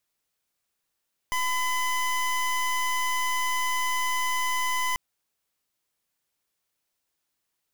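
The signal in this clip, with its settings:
pulse wave 1,010 Hz, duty 24% −26 dBFS 3.64 s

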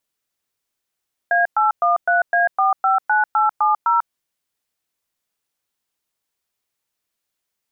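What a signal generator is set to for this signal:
touch tones "A813A459870", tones 144 ms, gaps 111 ms, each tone −16 dBFS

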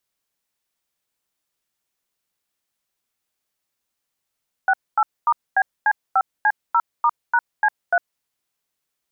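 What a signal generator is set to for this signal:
touch tones "68*BC5C0*#C3", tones 55 ms, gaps 240 ms, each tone −16 dBFS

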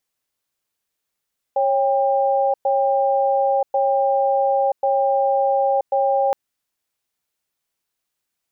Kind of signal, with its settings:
tone pair in a cadence 549 Hz, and 797 Hz, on 0.98 s, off 0.11 s, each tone −18 dBFS 4.77 s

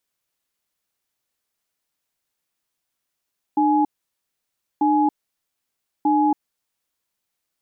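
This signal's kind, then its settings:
tone pair in a cadence 301 Hz, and 839 Hz, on 0.28 s, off 0.96 s, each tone −17.5 dBFS 3.29 s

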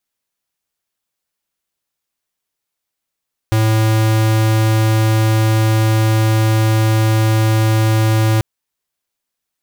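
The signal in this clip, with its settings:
tone square 110 Hz −13 dBFS 4.89 s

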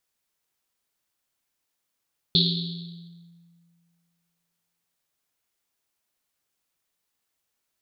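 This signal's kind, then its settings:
drum after Risset length 3.61 s, pitch 170 Hz, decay 2.12 s, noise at 3,900 Hz, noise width 1,100 Hz, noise 50%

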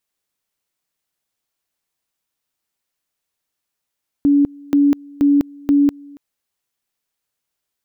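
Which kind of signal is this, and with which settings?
tone at two levels in turn 285 Hz −9.5 dBFS, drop 26 dB, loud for 0.20 s, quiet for 0.28 s, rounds 4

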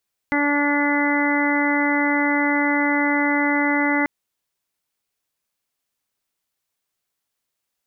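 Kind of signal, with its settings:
steady harmonic partials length 3.74 s, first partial 289 Hz, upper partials −7.5/−5/−11/−7.5/−9/−1.5 dB, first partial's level −20.5 dB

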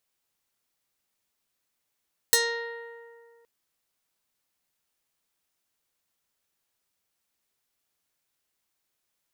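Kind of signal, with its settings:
Karplus-Strong string A#4, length 1.12 s, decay 2.14 s, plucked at 0.4, medium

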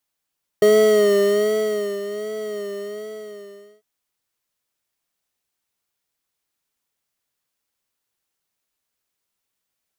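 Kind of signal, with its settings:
subtractive patch with vibrato G#4, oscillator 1 triangle, oscillator 2 square, interval +7 semitones, oscillator 2 level −11 dB, sub −22 dB, noise −22 dB, filter highpass, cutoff 160 Hz, Q 2.2, filter envelope 0.5 octaves, attack 3.5 ms, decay 1.38 s, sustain −15 dB, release 1.28 s, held 1.92 s, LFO 1.3 Hz, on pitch 62 cents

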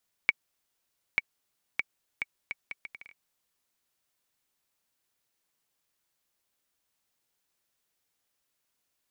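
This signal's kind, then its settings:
bouncing ball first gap 0.89 s, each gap 0.69, 2,260 Hz, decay 30 ms −8 dBFS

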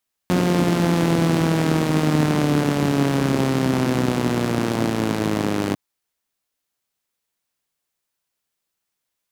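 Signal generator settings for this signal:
pulse-train model of a four-cylinder engine, changing speed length 5.45 s, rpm 5,400, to 3,000, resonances 170/260 Hz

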